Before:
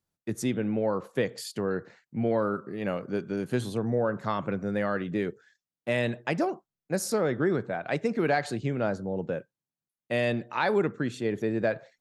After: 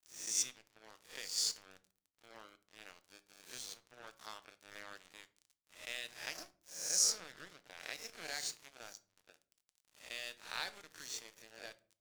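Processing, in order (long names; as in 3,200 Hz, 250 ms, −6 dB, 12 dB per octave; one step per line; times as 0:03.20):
peak hold with a rise ahead of every peak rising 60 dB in 0.83 s
in parallel at +1 dB: downward compressor 12 to 1, threshold −34 dBFS, peak gain reduction 16.5 dB
on the sum: surface crackle 49 per second −37 dBFS
resonant band-pass 5,900 Hz, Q 2.9
dead-zone distortion −49.5 dBFS
rectangular room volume 340 cubic metres, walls furnished, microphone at 0.5 metres
level +5 dB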